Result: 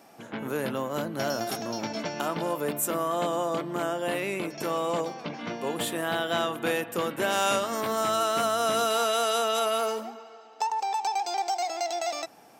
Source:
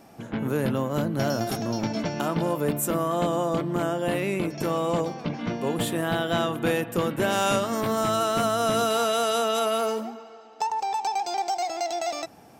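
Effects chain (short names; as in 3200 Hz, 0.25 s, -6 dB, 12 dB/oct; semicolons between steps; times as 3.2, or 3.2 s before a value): HPF 480 Hz 6 dB/oct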